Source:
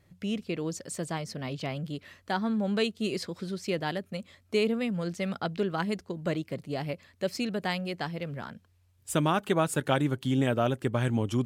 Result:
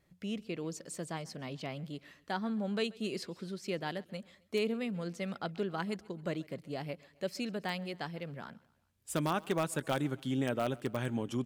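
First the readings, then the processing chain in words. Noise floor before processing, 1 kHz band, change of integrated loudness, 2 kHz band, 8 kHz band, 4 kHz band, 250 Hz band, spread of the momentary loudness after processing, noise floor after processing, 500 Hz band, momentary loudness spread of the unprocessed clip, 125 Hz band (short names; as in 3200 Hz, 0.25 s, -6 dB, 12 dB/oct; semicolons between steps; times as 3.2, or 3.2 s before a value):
-65 dBFS, -6.5 dB, -6.5 dB, -6.0 dB, -5.5 dB, -6.0 dB, -6.5 dB, 10 LU, -70 dBFS, -6.0 dB, 10 LU, -8.0 dB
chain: bell 97 Hz -14 dB 0.37 oct; in parallel at -11 dB: wrapped overs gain 15.5 dB; on the sum: feedback echo 0.133 s, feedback 49%, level -23.5 dB; gain -8 dB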